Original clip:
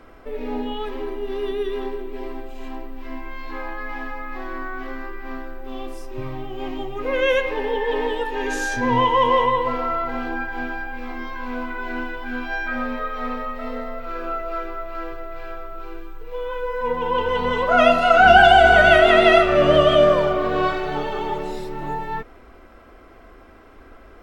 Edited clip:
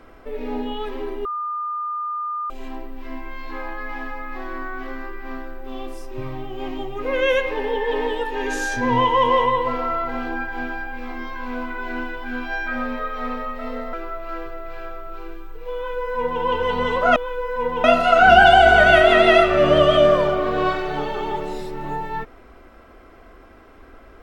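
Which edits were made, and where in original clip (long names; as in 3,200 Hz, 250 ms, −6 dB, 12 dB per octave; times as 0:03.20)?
0:01.25–0:02.50: beep over 1,210 Hz −23.5 dBFS
0:13.93–0:14.59: remove
0:16.41–0:17.09: duplicate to 0:17.82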